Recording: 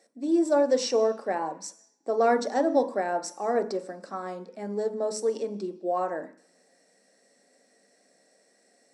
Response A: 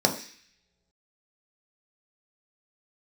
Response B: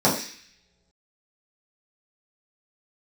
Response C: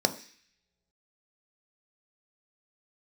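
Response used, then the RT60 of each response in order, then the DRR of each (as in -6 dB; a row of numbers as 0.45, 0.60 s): C; not exponential, not exponential, not exponential; 2.0, -8.0, 7.5 dB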